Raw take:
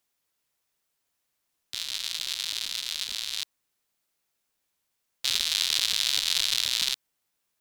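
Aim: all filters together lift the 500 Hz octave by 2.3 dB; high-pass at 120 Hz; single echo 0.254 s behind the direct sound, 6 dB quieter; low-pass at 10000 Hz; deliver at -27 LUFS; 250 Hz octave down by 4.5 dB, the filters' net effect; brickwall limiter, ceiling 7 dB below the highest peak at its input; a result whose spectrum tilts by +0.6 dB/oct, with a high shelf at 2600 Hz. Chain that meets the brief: HPF 120 Hz; LPF 10000 Hz; bell 250 Hz -8 dB; bell 500 Hz +5 dB; high shelf 2600 Hz -5.5 dB; limiter -17 dBFS; echo 0.254 s -6 dB; gain +6 dB

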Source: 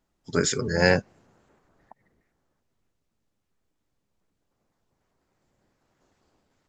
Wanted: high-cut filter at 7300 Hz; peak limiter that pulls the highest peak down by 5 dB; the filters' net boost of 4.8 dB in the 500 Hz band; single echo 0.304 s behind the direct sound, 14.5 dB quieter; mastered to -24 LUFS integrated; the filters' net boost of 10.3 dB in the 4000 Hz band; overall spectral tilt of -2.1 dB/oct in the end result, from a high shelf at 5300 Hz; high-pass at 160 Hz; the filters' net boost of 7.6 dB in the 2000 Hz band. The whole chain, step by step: HPF 160 Hz; LPF 7300 Hz; bell 500 Hz +5 dB; bell 2000 Hz +6.5 dB; bell 4000 Hz +8.5 dB; high shelf 5300 Hz +8.5 dB; limiter -4 dBFS; echo 0.304 s -14.5 dB; gain -3.5 dB

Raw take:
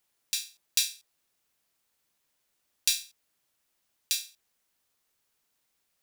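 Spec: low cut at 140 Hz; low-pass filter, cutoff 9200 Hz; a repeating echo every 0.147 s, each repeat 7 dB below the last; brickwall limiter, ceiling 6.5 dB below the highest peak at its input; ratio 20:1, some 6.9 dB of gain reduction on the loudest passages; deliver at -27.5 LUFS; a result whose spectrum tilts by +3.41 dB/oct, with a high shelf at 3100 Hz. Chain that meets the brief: HPF 140 Hz; LPF 9200 Hz; high shelf 3100 Hz -8.5 dB; compressor 20:1, threshold -34 dBFS; limiter -20.5 dBFS; feedback echo 0.147 s, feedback 45%, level -7 dB; gain +17.5 dB

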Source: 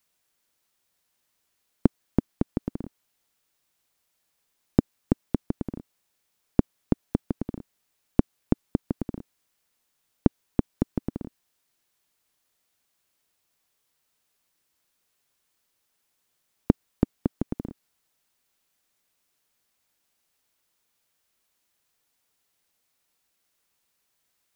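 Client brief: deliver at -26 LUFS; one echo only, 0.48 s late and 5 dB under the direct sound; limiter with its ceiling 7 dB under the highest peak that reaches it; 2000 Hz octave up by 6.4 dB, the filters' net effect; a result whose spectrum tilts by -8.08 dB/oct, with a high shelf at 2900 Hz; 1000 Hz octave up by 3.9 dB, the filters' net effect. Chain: bell 1000 Hz +3.5 dB; bell 2000 Hz +4.5 dB; high shelf 2900 Hz +7 dB; limiter -8 dBFS; echo 0.48 s -5 dB; gain +7.5 dB

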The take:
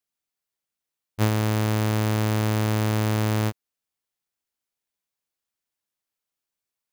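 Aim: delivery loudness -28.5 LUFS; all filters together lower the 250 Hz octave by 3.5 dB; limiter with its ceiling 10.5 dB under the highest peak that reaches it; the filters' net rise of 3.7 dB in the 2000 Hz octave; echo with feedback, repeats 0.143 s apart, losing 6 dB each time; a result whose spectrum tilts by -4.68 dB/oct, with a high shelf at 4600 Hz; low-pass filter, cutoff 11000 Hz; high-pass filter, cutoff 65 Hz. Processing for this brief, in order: HPF 65 Hz; LPF 11000 Hz; bell 250 Hz -4.5 dB; bell 2000 Hz +4 dB; high shelf 4600 Hz +3.5 dB; limiter -15.5 dBFS; feedback echo 0.143 s, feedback 50%, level -6 dB; gain +3 dB

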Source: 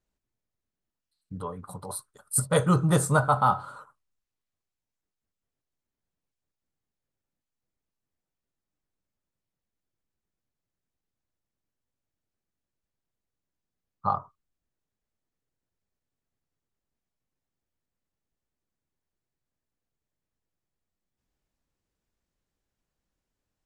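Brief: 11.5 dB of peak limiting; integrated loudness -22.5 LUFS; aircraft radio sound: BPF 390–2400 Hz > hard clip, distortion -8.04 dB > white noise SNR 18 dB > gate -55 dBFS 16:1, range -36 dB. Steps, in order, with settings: limiter -20.5 dBFS; BPF 390–2400 Hz; hard clip -32.5 dBFS; white noise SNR 18 dB; gate -55 dBFS 16:1, range -36 dB; gain +17 dB

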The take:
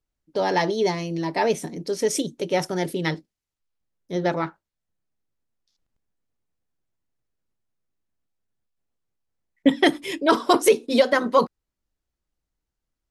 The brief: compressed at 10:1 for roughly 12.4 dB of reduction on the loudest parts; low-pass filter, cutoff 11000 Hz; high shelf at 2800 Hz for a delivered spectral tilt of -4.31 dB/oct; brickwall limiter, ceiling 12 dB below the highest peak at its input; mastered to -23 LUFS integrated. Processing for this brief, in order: LPF 11000 Hz; high shelf 2800 Hz +4 dB; compressor 10:1, threshold -24 dBFS; gain +11 dB; limiter -13 dBFS

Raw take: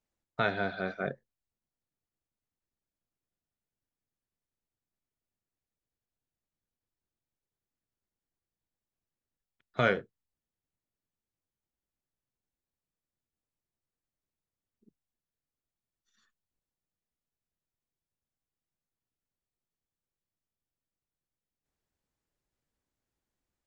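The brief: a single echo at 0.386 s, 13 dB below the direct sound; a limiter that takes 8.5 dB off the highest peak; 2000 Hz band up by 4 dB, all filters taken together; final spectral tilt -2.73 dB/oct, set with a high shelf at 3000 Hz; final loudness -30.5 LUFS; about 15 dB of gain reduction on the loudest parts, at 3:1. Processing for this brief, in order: bell 2000 Hz +3 dB; high shelf 3000 Hz +8.5 dB; compressor 3:1, threshold -40 dBFS; limiter -27 dBFS; echo 0.386 s -13 dB; gain +15 dB

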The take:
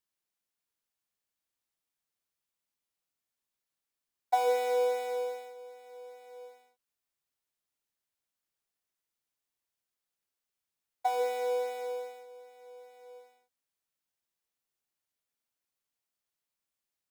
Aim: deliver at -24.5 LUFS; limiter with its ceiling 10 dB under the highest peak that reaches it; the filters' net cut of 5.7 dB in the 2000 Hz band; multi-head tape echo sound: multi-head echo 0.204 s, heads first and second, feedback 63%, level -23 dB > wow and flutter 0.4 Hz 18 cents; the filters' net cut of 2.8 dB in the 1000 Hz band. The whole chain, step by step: bell 1000 Hz -3.5 dB; bell 2000 Hz -6.5 dB; limiter -29 dBFS; multi-head echo 0.204 s, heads first and second, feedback 63%, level -23 dB; wow and flutter 0.4 Hz 18 cents; gain +13.5 dB

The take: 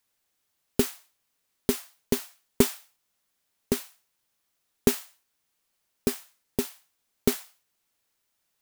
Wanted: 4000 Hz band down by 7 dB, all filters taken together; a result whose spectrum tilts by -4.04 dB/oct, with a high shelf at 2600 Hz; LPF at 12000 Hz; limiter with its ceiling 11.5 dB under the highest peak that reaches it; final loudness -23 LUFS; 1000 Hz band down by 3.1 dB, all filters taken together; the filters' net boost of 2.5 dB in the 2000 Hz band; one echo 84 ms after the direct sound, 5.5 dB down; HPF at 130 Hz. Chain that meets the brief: HPF 130 Hz; LPF 12000 Hz; bell 1000 Hz -5.5 dB; bell 2000 Hz +8.5 dB; high shelf 2600 Hz -4 dB; bell 4000 Hz -8.5 dB; limiter -17.5 dBFS; echo 84 ms -5.5 dB; gain +14.5 dB

